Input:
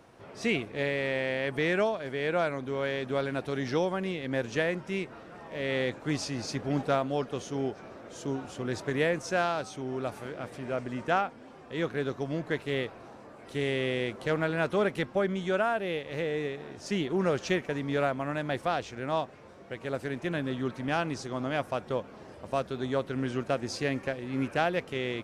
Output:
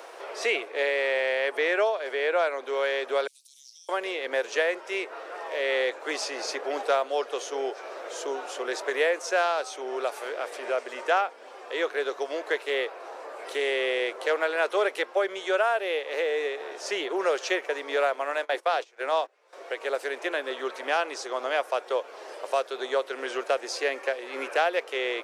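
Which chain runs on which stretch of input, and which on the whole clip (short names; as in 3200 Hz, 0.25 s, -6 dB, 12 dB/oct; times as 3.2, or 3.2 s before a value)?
1.57–2.73 high shelf 4500 Hz -5.5 dB + mismatched tape noise reduction encoder only
3.27–3.89 inverse Chebyshev high-pass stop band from 1700 Hz, stop band 60 dB + compressor 3:1, threshold -59 dBFS
17.96–19.53 notches 50/100/150/200/250/300/350 Hz + gate -39 dBFS, range -20 dB + mismatched tape noise reduction encoder only
whole clip: steep high-pass 410 Hz 36 dB/oct; three-band squash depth 40%; gain +5 dB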